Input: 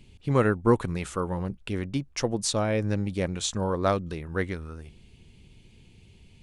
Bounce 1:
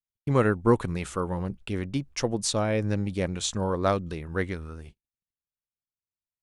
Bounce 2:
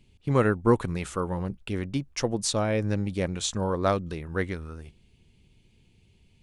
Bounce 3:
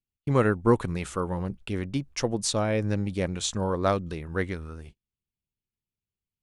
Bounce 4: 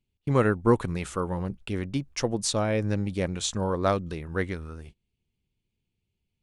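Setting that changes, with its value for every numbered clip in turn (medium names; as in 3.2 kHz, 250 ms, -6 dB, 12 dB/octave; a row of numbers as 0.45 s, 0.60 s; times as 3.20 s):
gate, range: -55 dB, -7 dB, -41 dB, -27 dB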